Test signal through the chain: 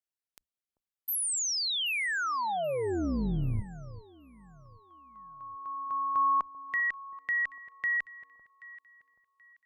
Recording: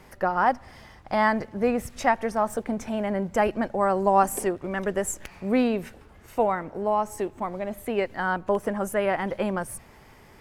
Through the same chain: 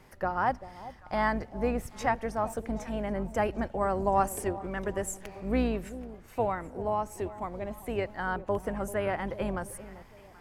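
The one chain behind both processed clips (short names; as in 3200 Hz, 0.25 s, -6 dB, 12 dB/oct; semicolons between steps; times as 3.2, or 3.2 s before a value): octaver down 2 oct, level -3 dB; echo with dull and thin repeats by turns 0.39 s, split 890 Hz, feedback 54%, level -14 dB; gain -6 dB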